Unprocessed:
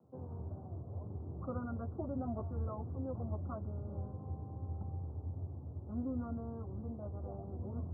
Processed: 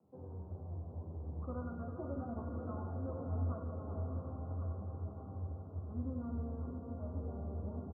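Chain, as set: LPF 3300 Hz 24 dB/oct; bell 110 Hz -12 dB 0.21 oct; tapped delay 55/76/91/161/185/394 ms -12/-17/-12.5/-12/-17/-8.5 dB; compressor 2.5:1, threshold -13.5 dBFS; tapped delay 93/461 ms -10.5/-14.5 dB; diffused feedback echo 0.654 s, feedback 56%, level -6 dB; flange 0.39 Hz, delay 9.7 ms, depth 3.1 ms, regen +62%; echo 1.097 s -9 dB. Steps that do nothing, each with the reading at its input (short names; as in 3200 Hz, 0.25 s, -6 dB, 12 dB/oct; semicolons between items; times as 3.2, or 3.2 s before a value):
LPF 3300 Hz: input band ends at 910 Hz; compressor, threshold -13.5 dBFS: input peak -26.5 dBFS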